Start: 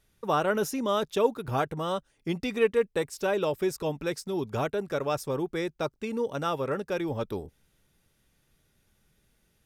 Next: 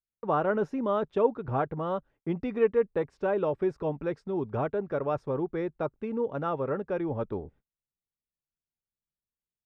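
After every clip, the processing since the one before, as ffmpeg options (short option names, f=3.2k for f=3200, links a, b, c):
-af "lowpass=1.4k,agate=range=-33dB:threshold=-54dB:ratio=16:detection=peak"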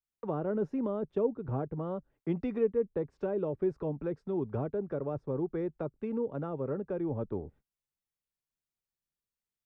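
-filter_complex "[0:a]acrossover=split=180|480[a][b][c];[c]acompressor=threshold=-42dB:ratio=5[d];[a][b][d]amix=inputs=3:normalize=0,adynamicequalizer=threshold=0.00251:dfrequency=1800:dqfactor=0.7:tfrequency=1800:tqfactor=0.7:attack=5:release=100:ratio=0.375:range=3:mode=cutabove:tftype=highshelf,volume=-1dB"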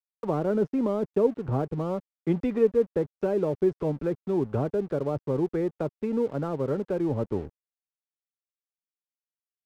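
-af "aeval=exprs='sgn(val(0))*max(abs(val(0))-0.00178,0)':c=same,volume=7dB"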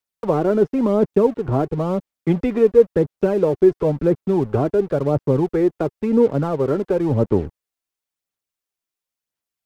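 -af "aphaser=in_gain=1:out_gain=1:delay=3:decay=0.35:speed=0.96:type=sinusoidal,volume=8dB"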